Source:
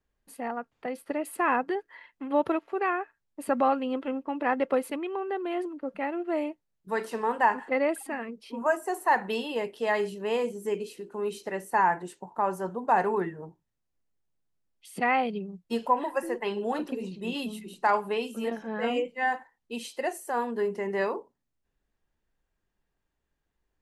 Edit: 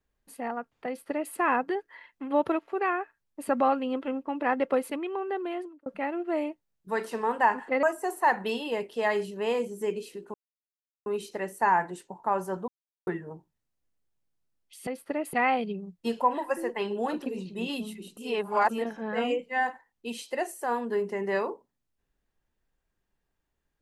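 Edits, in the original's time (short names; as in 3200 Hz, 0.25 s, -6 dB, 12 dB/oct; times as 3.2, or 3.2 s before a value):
0.87–1.33 copy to 14.99
5.42–5.86 fade out
7.83–8.67 cut
11.18 insert silence 0.72 s
12.8–13.19 mute
17.83–18.35 reverse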